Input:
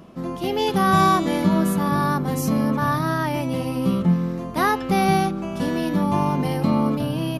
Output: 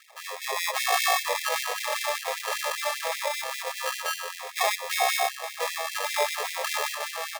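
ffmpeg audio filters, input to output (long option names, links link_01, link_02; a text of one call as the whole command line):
ffmpeg -i in.wav -af "acrusher=samples=30:mix=1:aa=0.000001,afftfilt=real='re*gte(b*sr/1024,410*pow(1900/410,0.5+0.5*sin(2*PI*5.1*pts/sr)))':imag='im*gte(b*sr/1024,410*pow(1900/410,0.5+0.5*sin(2*PI*5.1*pts/sr)))':win_size=1024:overlap=0.75" out.wav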